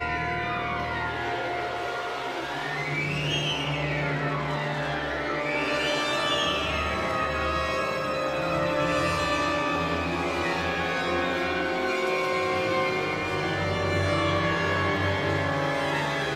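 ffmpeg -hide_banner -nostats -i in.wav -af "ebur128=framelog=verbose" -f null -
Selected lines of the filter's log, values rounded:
Integrated loudness:
  I:         -26.4 LUFS
  Threshold: -36.4 LUFS
Loudness range:
  LRA:         2.6 LU
  Threshold: -46.3 LUFS
  LRA low:   -28.1 LUFS
  LRA high:  -25.5 LUFS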